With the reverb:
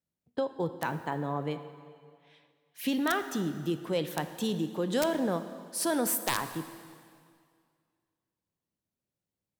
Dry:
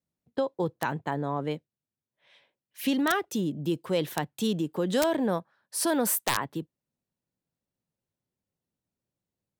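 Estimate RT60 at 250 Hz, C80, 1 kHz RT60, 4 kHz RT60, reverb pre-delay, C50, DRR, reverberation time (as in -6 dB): 2.1 s, 12.0 dB, 2.1 s, 2.0 s, 7 ms, 11.0 dB, 9.5 dB, 2.1 s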